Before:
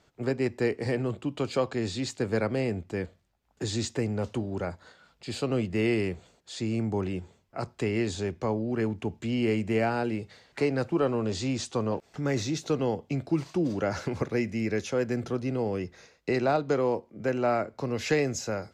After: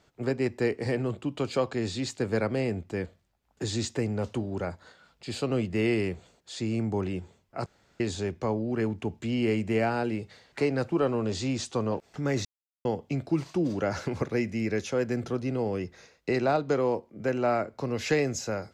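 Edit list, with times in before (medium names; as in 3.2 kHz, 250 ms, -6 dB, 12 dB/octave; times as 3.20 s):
7.66–8.00 s: room tone
12.45–12.85 s: mute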